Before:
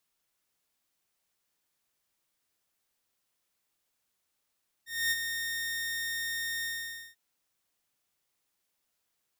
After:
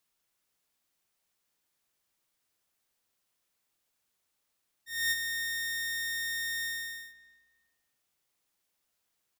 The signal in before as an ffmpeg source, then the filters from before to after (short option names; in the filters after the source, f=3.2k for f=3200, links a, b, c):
-f lavfi -i "aevalsrc='0.075*(2*mod(1840*t,1)-1)':d=2.291:s=44100,afade=t=in:d=0.251,afade=t=out:st=0.251:d=0.037:silence=0.447,afade=t=out:st=1.78:d=0.511"
-filter_complex "[0:a]asplit=2[a][b];[b]adelay=312,lowpass=f=1.7k:p=1,volume=-14dB,asplit=2[c][d];[d]adelay=312,lowpass=f=1.7k:p=1,volume=0.29,asplit=2[e][f];[f]adelay=312,lowpass=f=1.7k:p=1,volume=0.29[g];[a][c][e][g]amix=inputs=4:normalize=0"